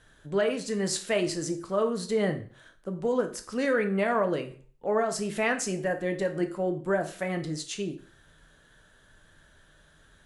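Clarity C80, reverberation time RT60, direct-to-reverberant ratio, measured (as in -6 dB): 17.0 dB, 0.45 s, 6.0 dB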